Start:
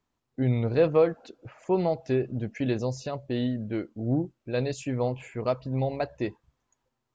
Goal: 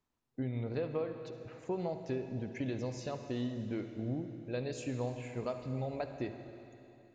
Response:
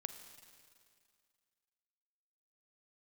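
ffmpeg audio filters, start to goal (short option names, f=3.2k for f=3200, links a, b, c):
-filter_complex "[0:a]acompressor=threshold=-27dB:ratio=6[a];[1:a]atrim=start_sample=2205,asetrate=32193,aresample=44100[b];[a][b]afir=irnorm=-1:irlink=0,volume=-4dB"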